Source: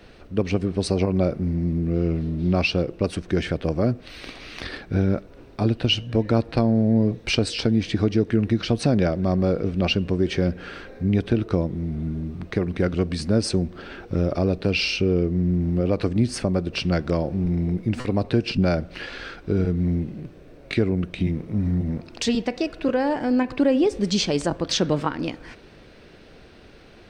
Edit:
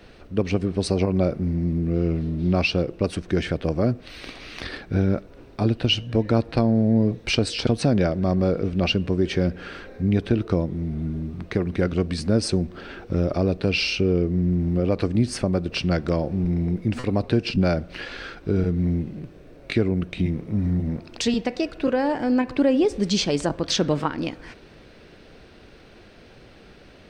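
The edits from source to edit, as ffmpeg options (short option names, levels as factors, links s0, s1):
-filter_complex "[0:a]asplit=2[s0][s1];[s0]atrim=end=7.672[s2];[s1]atrim=start=8.678[s3];[s2][s3]acrossfade=d=0.004:c1=hsin:c2=hsin"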